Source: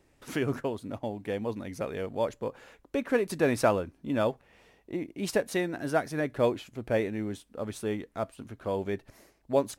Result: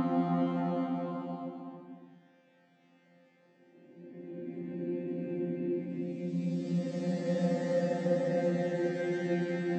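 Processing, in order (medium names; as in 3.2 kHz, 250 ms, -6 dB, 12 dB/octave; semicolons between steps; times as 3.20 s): vocoder on a held chord bare fifth, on F3; Paulstretch 6.7×, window 0.50 s, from 4.19 s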